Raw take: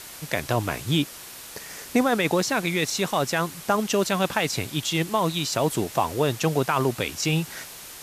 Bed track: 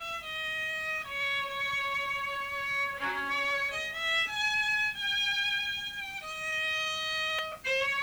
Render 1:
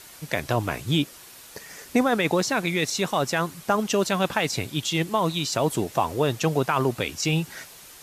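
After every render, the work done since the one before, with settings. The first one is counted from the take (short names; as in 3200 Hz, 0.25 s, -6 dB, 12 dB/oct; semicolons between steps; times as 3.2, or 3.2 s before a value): denoiser 6 dB, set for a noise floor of -41 dBFS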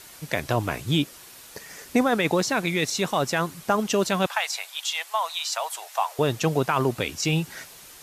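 4.26–6.19 steep high-pass 690 Hz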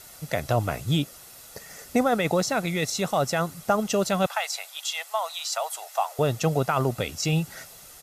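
bell 2500 Hz -5 dB 1.8 oct; comb 1.5 ms, depth 40%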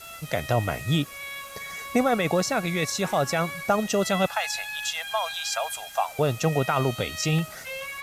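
add bed track -6 dB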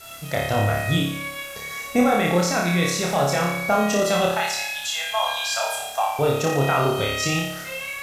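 flutter echo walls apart 4.9 m, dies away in 0.76 s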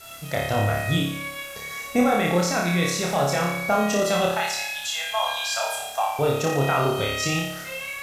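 gain -1.5 dB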